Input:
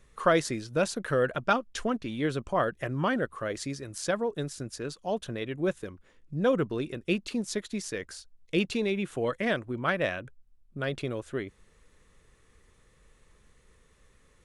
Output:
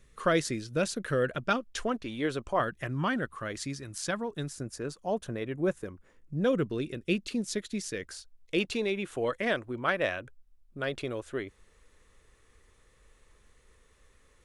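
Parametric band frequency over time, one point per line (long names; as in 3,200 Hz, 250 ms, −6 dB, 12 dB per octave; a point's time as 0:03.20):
parametric band −7 dB 1.1 octaves
860 Hz
from 0:01.64 160 Hz
from 0:02.60 510 Hz
from 0:04.51 3,500 Hz
from 0:06.44 900 Hz
from 0:08.08 160 Hz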